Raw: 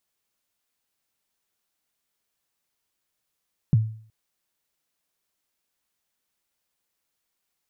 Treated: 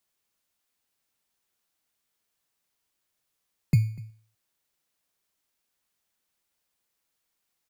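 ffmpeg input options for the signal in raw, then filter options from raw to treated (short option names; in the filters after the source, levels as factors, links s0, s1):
-f lavfi -i "aevalsrc='0.266*pow(10,-3*t/0.5)*sin(2*PI*(170*0.027/log(110/170)*(exp(log(110/170)*min(t,0.027)/0.027)-1)+110*max(t-0.027,0)))':d=0.37:s=44100"
-filter_complex "[0:a]acrossover=split=110|400[s0][s1][s2];[s1]acrusher=samples=15:mix=1:aa=0.000001:lfo=1:lforange=9:lforate=0.59[s3];[s0][s3][s2]amix=inputs=3:normalize=0,aecho=1:1:245:0.0794"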